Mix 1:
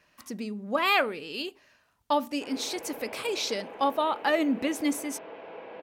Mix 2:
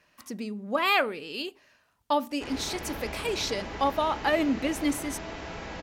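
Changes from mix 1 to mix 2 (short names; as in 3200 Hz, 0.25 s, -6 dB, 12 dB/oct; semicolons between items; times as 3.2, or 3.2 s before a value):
background: remove speaker cabinet 380–2600 Hz, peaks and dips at 490 Hz +9 dB, 1300 Hz -6 dB, 1900 Hz -8 dB; reverb: on, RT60 2.3 s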